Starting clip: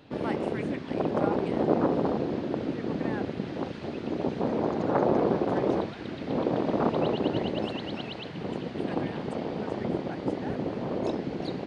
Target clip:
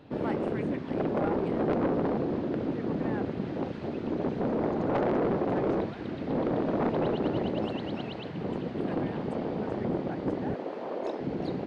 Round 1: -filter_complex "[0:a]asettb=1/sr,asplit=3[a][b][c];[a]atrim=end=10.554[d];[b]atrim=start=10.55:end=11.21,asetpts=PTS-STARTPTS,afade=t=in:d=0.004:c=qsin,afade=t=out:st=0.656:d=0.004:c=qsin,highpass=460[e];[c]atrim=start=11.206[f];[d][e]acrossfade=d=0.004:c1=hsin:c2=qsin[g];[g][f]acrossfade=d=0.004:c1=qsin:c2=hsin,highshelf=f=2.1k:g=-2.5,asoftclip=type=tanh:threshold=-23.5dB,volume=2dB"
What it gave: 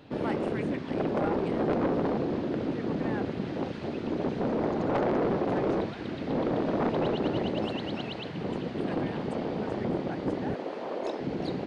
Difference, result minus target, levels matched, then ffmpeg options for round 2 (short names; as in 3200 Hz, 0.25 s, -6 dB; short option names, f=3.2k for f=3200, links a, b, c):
4000 Hz band +4.5 dB
-filter_complex "[0:a]asettb=1/sr,asplit=3[a][b][c];[a]atrim=end=10.554[d];[b]atrim=start=10.55:end=11.21,asetpts=PTS-STARTPTS,afade=t=in:d=0.004:c=qsin,afade=t=out:st=0.656:d=0.004:c=qsin,highpass=460[e];[c]atrim=start=11.206[f];[d][e]acrossfade=d=0.004:c1=hsin:c2=qsin[g];[g][f]acrossfade=d=0.004:c1=qsin:c2=hsin,highshelf=f=2.1k:g=-9.5,asoftclip=type=tanh:threshold=-23.5dB,volume=2dB"